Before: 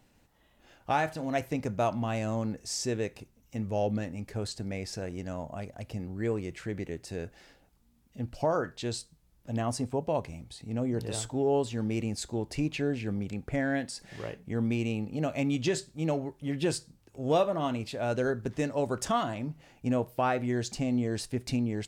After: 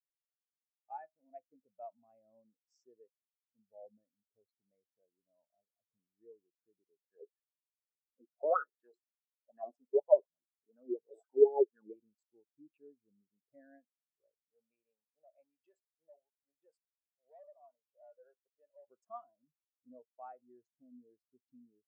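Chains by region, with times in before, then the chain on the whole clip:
7.01–11.96 bell 100 Hz -12 dB 0.51 oct + LFO bell 4.1 Hz 350–1600 Hz +17 dB
14.5–18.88 resonant low shelf 430 Hz -9.5 dB, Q 1.5 + hard clip -29 dBFS
whole clip: Wiener smoothing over 15 samples; HPF 660 Hz 6 dB/oct; spectral expander 2.5:1; gain -1.5 dB

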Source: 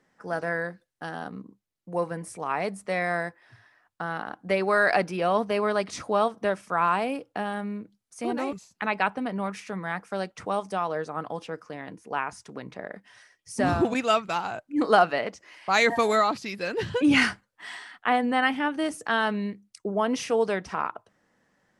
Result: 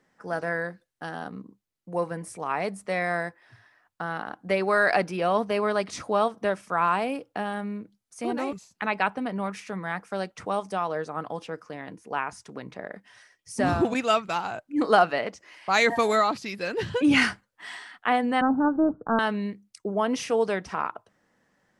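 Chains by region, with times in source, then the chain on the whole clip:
18.41–19.19 G.711 law mismatch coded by A + steep low-pass 1500 Hz 96 dB/oct + low shelf 430 Hz +11.5 dB
whole clip: dry

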